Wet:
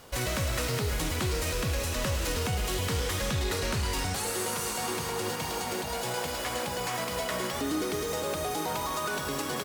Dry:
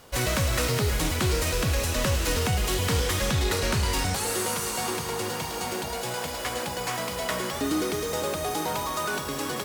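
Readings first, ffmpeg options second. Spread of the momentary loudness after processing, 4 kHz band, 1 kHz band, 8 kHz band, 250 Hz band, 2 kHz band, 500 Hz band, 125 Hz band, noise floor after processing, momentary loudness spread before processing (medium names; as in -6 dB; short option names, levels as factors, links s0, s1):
2 LU, -3.5 dB, -3.0 dB, -3.5 dB, -4.0 dB, -3.5 dB, -3.0 dB, -4.5 dB, -34 dBFS, 5 LU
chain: -filter_complex "[0:a]alimiter=limit=0.075:level=0:latency=1:release=106,asplit=2[s0][s1];[s1]adelay=130,highpass=300,lowpass=3400,asoftclip=type=hard:threshold=0.0266,volume=0.355[s2];[s0][s2]amix=inputs=2:normalize=0"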